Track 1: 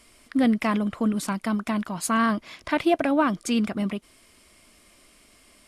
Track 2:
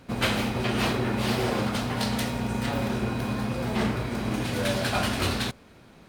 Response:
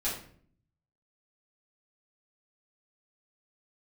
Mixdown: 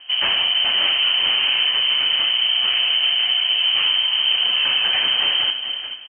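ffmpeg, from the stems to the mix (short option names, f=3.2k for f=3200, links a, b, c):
-filter_complex "[0:a]volume=-14dB[a];[1:a]volume=1.5dB,asplit=3[b][c][d];[c]volume=-13.5dB[e];[d]volume=-10dB[f];[2:a]atrim=start_sample=2205[g];[e][g]afir=irnorm=-1:irlink=0[h];[f]aecho=0:1:434|868|1302|1736|2170:1|0.33|0.109|0.0359|0.0119[i];[a][b][h][i]amix=inputs=4:normalize=0,lowshelf=f=250:g=11,aeval=exprs='0.224*(abs(mod(val(0)/0.224+3,4)-2)-1)':c=same,lowpass=f=2.7k:t=q:w=0.5098,lowpass=f=2.7k:t=q:w=0.6013,lowpass=f=2.7k:t=q:w=0.9,lowpass=f=2.7k:t=q:w=2.563,afreqshift=-3200"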